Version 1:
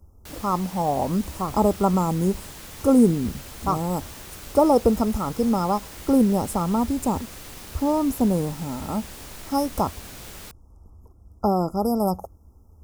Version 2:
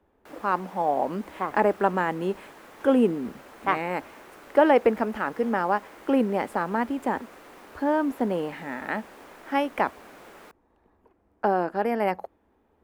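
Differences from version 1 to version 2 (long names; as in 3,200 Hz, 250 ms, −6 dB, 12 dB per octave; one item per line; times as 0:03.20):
speech: remove linear-phase brick-wall band-stop 1,400–4,900 Hz
master: add three-way crossover with the lows and the highs turned down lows −24 dB, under 250 Hz, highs −18 dB, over 2,100 Hz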